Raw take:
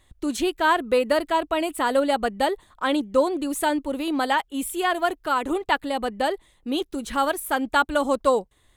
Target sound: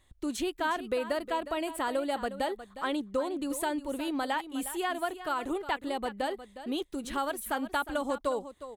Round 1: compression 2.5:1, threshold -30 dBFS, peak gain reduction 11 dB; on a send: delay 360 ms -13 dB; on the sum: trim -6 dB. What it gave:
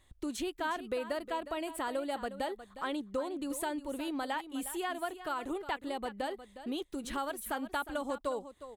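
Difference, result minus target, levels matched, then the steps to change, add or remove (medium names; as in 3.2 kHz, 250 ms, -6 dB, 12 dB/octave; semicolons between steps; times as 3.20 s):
compression: peak gain reduction +4.5 dB
change: compression 2.5:1, threshold -22.5 dBFS, peak gain reduction 6.5 dB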